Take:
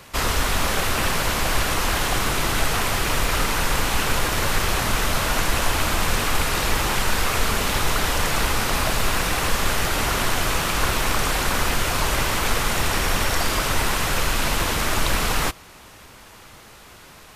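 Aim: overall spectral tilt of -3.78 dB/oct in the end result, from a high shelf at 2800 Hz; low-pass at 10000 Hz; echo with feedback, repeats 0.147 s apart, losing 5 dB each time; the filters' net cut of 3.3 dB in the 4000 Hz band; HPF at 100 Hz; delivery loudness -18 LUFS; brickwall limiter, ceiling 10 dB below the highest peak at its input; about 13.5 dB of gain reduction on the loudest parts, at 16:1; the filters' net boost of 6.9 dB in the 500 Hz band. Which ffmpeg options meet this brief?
-af "highpass=100,lowpass=10k,equalizer=f=500:t=o:g=8.5,highshelf=f=2.8k:g=3.5,equalizer=f=4k:t=o:g=-7.5,acompressor=threshold=-31dB:ratio=16,alimiter=level_in=4dB:limit=-24dB:level=0:latency=1,volume=-4dB,aecho=1:1:147|294|441|588|735|882|1029:0.562|0.315|0.176|0.0988|0.0553|0.031|0.0173,volume=17.5dB"

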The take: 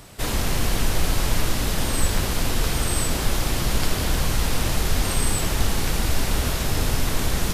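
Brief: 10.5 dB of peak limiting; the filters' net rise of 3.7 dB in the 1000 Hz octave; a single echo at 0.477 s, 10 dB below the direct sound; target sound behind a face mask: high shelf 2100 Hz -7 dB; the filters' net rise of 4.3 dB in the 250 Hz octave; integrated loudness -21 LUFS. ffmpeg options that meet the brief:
-af "equalizer=f=250:t=o:g=5.5,equalizer=f=1k:t=o:g=6,alimiter=limit=-16.5dB:level=0:latency=1,highshelf=f=2.1k:g=-7,aecho=1:1:477:0.316,volume=7.5dB"

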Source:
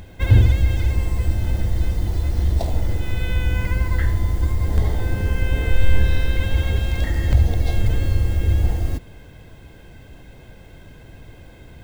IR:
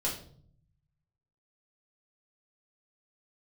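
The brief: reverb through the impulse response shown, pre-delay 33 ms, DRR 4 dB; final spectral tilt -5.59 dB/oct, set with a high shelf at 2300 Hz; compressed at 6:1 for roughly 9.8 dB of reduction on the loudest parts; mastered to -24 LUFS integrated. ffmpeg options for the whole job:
-filter_complex "[0:a]highshelf=f=2.3k:g=6,acompressor=threshold=-18dB:ratio=6,asplit=2[a][b];[1:a]atrim=start_sample=2205,adelay=33[c];[b][c]afir=irnorm=-1:irlink=0,volume=-9dB[d];[a][d]amix=inputs=2:normalize=0,volume=-1dB"

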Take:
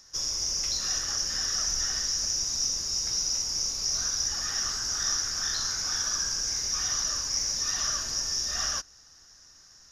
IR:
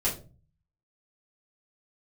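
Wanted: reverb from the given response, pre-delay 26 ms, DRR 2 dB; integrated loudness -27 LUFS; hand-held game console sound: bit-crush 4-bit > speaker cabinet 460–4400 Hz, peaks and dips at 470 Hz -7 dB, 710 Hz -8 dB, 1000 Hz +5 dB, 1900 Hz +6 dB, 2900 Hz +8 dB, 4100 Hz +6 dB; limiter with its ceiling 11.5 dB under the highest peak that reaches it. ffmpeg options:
-filter_complex "[0:a]alimiter=level_in=2.5dB:limit=-24dB:level=0:latency=1,volume=-2.5dB,asplit=2[a][b];[1:a]atrim=start_sample=2205,adelay=26[c];[b][c]afir=irnorm=-1:irlink=0,volume=-10dB[d];[a][d]amix=inputs=2:normalize=0,acrusher=bits=3:mix=0:aa=0.000001,highpass=460,equalizer=f=470:t=q:w=4:g=-7,equalizer=f=710:t=q:w=4:g=-8,equalizer=f=1k:t=q:w=4:g=5,equalizer=f=1.9k:t=q:w=4:g=6,equalizer=f=2.9k:t=q:w=4:g=8,equalizer=f=4.1k:t=q:w=4:g=6,lowpass=f=4.4k:w=0.5412,lowpass=f=4.4k:w=1.3066,volume=20.5dB"

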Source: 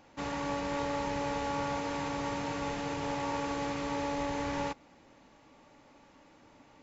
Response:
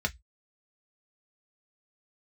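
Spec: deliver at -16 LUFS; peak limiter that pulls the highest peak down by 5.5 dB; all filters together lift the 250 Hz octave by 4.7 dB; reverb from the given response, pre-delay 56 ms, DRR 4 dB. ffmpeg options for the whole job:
-filter_complex "[0:a]equalizer=f=250:t=o:g=5.5,alimiter=level_in=1.5dB:limit=-24dB:level=0:latency=1,volume=-1.5dB,asplit=2[a][b];[1:a]atrim=start_sample=2205,adelay=56[c];[b][c]afir=irnorm=-1:irlink=0,volume=-11dB[d];[a][d]amix=inputs=2:normalize=0,volume=18.5dB"

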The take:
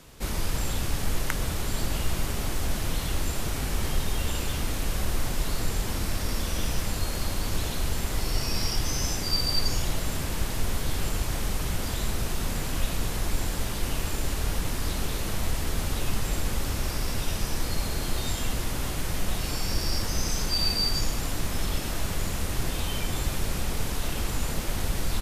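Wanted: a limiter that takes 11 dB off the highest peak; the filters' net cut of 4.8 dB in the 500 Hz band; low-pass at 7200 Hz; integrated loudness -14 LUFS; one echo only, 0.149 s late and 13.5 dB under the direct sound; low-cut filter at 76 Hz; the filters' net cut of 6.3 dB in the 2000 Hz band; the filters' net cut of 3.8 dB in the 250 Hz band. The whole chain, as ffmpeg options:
-af "highpass=76,lowpass=7.2k,equalizer=f=250:t=o:g=-4,equalizer=f=500:t=o:g=-4.5,equalizer=f=2k:t=o:g=-8,alimiter=level_in=0.5dB:limit=-24dB:level=0:latency=1,volume=-0.5dB,aecho=1:1:149:0.211,volume=20.5dB"

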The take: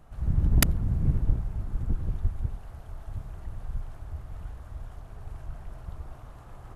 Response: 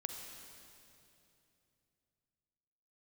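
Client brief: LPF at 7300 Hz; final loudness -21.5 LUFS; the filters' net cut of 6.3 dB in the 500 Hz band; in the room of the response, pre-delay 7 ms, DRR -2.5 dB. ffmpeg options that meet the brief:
-filter_complex "[0:a]lowpass=7.3k,equalizer=f=500:t=o:g=-9,asplit=2[a][b];[1:a]atrim=start_sample=2205,adelay=7[c];[b][c]afir=irnorm=-1:irlink=0,volume=3.5dB[d];[a][d]amix=inputs=2:normalize=0,volume=6.5dB"

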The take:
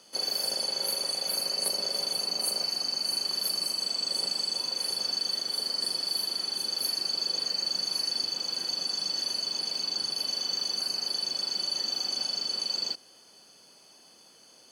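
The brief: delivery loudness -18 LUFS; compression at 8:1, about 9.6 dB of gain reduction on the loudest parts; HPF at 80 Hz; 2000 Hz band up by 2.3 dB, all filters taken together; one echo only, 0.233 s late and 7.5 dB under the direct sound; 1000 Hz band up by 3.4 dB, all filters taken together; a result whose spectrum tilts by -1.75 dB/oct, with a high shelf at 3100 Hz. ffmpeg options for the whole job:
-af "highpass=80,equalizer=f=1k:t=o:g=4,equalizer=f=2k:t=o:g=4.5,highshelf=f=3.1k:g=-6.5,acompressor=threshold=-40dB:ratio=8,aecho=1:1:233:0.422,volume=22dB"

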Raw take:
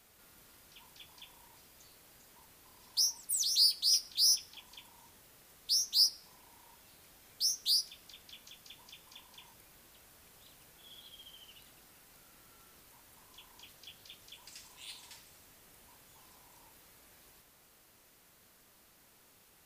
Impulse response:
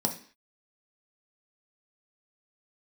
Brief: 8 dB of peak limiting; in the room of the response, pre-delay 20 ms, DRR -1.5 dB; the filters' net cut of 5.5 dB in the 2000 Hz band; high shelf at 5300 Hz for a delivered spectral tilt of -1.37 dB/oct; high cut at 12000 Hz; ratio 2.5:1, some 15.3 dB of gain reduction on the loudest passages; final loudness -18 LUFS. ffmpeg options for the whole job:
-filter_complex "[0:a]lowpass=12k,equalizer=f=2k:t=o:g=-9,highshelf=f=5.3k:g=6.5,acompressor=threshold=-45dB:ratio=2.5,alimiter=level_in=12.5dB:limit=-24dB:level=0:latency=1,volume=-12.5dB,asplit=2[a][b];[1:a]atrim=start_sample=2205,adelay=20[c];[b][c]afir=irnorm=-1:irlink=0,volume=-5.5dB[d];[a][d]amix=inputs=2:normalize=0,volume=27.5dB"

